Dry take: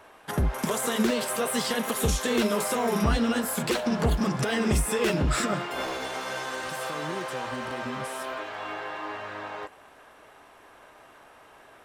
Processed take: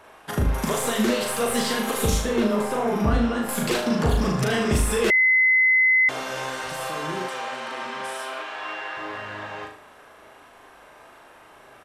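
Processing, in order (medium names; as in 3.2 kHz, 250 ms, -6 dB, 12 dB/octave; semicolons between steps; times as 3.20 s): tracing distortion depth 0.025 ms; 2.20–3.49 s: treble shelf 2.5 kHz -11.5 dB; flutter echo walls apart 6.5 m, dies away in 0.51 s; resampled via 32 kHz; 5.10–6.09 s: bleep 2.04 kHz -16 dBFS; 7.28–8.97 s: frequency weighting A; trim +1.5 dB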